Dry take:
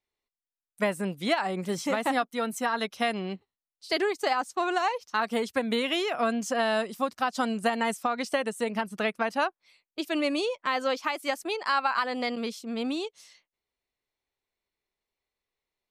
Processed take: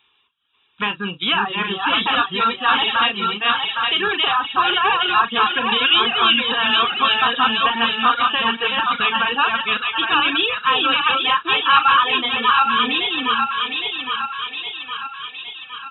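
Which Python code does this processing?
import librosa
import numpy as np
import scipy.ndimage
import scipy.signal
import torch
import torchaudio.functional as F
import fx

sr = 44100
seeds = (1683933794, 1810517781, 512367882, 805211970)

y = fx.reverse_delay(x, sr, ms=408, wet_db=-1.0)
y = fx.tilt_shelf(y, sr, db=-10.0, hz=800.0)
y = fx.notch(y, sr, hz=1500.0, q=13.0)
y = fx.doubler(y, sr, ms=39.0, db=-9)
y = fx.echo_thinned(y, sr, ms=813, feedback_pct=51, hz=720.0, wet_db=-4.0)
y = fx.power_curve(y, sr, exponent=0.7)
y = fx.brickwall_lowpass(y, sr, high_hz=3900.0)
y = fx.dereverb_blind(y, sr, rt60_s=0.84)
y = scipy.signal.sosfilt(scipy.signal.butter(2, 77.0, 'highpass', fs=sr, output='sos'), y)
y = fx.peak_eq(y, sr, hz=520.0, db=4.0, octaves=0.55)
y = fx.fixed_phaser(y, sr, hz=3000.0, stages=8)
y = y * librosa.db_to_amplitude(5.5)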